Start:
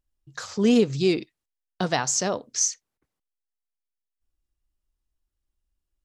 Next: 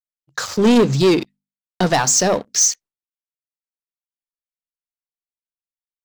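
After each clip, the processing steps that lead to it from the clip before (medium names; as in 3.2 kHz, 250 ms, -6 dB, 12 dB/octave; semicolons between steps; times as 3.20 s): expander -44 dBFS; hum notches 50/100/150/200/250 Hz; waveshaping leveller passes 3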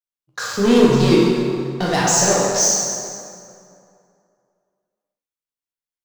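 plate-style reverb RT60 2.4 s, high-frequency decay 0.65×, DRR -5.5 dB; trim -5.5 dB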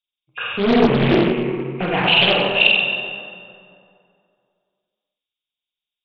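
knee-point frequency compression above 2.1 kHz 4:1; loudspeaker Doppler distortion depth 0.63 ms; trim -1.5 dB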